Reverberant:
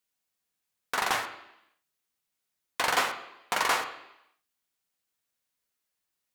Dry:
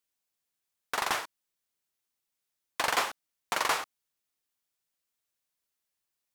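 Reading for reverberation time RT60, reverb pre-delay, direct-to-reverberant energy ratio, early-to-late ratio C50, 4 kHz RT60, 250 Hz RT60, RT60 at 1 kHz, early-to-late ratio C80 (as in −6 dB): 0.85 s, 3 ms, 3.5 dB, 10.5 dB, 0.90 s, 0.85 s, 0.85 s, 12.0 dB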